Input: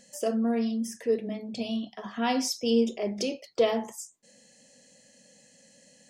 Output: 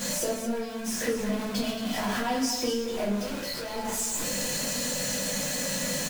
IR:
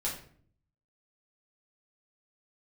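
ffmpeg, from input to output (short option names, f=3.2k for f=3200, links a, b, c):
-filter_complex "[0:a]aeval=exprs='val(0)+0.5*0.0447*sgn(val(0))':c=same,acompressor=threshold=-29dB:ratio=6,asettb=1/sr,asplit=3[a][b][c];[a]atrim=end=3.184[d];[b]atrim=start=3.18:end=3.76,asetpts=PTS-STARTPTS,afade=t=in:d=0.004:c=qsin,afade=t=out:st=0.576:d=0.004:c=qsin,asoftclip=type=hard:threshold=-37dB[e];[c]atrim=start=3.756[f];[d][e]acrossfade=d=0.004:c1=hsin:c2=qsin[g];[g][f]acrossfade=d=0.004:c1=qsin:c2=hsin,aecho=1:1:224:0.316[h];[1:a]atrim=start_sample=2205,asetrate=48510,aresample=44100[i];[h][i]afir=irnorm=-1:irlink=0,volume=-1dB"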